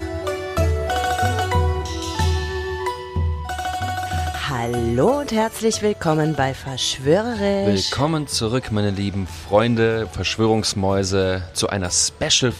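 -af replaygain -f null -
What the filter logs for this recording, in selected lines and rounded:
track_gain = +1.2 dB
track_peak = 0.510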